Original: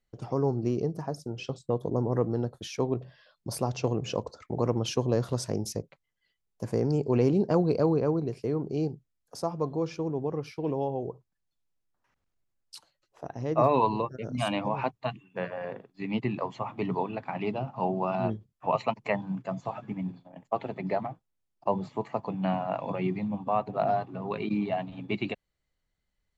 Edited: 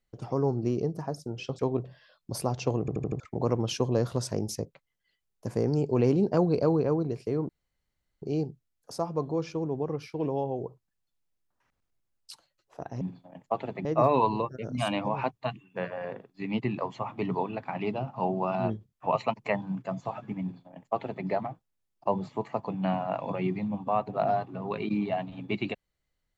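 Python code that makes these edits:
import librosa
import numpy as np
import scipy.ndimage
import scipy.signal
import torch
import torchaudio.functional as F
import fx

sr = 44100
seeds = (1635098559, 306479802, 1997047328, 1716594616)

y = fx.edit(x, sr, fx.cut(start_s=1.59, length_s=1.17),
    fx.stutter_over(start_s=3.97, slice_s=0.08, count=5),
    fx.insert_room_tone(at_s=8.66, length_s=0.73),
    fx.duplicate(start_s=20.02, length_s=0.84, to_s=13.45), tone=tone)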